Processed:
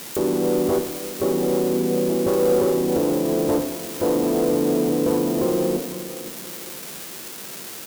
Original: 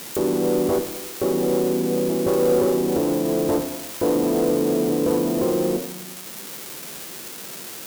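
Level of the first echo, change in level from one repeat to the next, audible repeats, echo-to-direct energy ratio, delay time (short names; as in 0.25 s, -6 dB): -14.0 dB, -8.5 dB, 2, -13.5 dB, 0.512 s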